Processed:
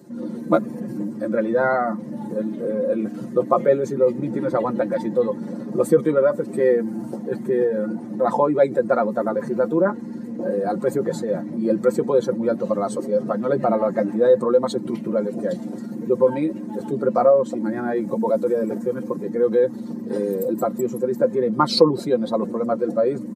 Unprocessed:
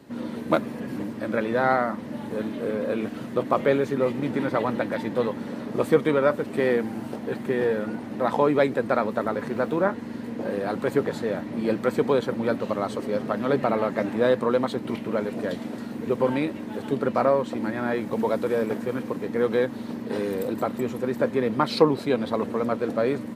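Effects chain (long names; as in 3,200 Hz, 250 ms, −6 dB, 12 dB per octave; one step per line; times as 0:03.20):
expanding power law on the bin magnitudes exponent 1.5
high-pass filter 99 Hz
high shelf with overshoot 4,500 Hz +13.5 dB, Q 1.5
comb filter 5.7 ms
level +3 dB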